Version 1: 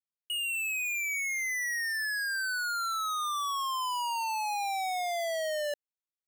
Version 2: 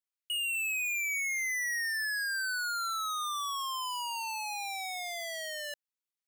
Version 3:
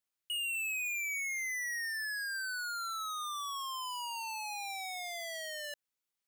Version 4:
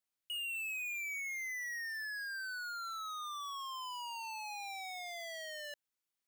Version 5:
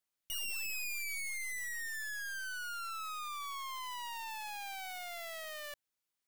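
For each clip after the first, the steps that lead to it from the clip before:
HPF 1200 Hz 12 dB/oct
limiter -34 dBFS, peak gain reduction 8 dB; gain +3.5 dB
overloaded stage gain 35 dB; gain -2 dB
tracing distortion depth 0.2 ms; gain +1 dB

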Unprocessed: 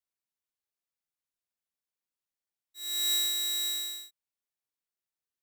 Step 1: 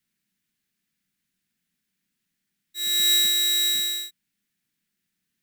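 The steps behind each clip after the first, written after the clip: EQ curve 110 Hz 0 dB, 190 Hz +15 dB, 540 Hz -12 dB, 1100 Hz -11 dB, 1700 Hz +2 dB, 5700 Hz -3 dB; in parallel at +2 dB: compressor, threshold -42 dBFS, peak gain reduction 13.5 dB; on the sum: gain +8 dB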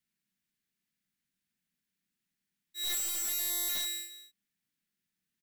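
echo 0.209 s -13.5 dB; wrapped overs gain 21.5 dB; gain -7.5 dB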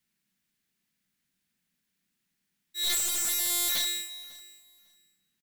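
feedback echo 0.549 s, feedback 17%, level -20.5 dB; Doppler distortion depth 0.15 ms; gain +6.5 dB

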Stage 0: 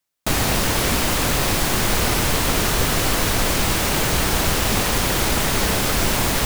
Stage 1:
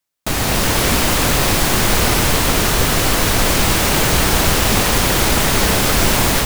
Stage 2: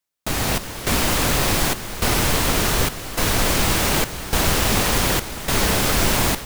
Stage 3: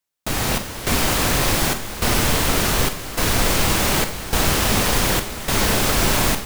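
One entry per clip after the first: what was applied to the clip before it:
AGC gain up to 7.5 dB
step gate "xxxx..xx" 104 bpm -12 dB; gain -4 dB
Schroeder reverb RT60 0.33 s, combs from 29 ms, DRR 9 dB

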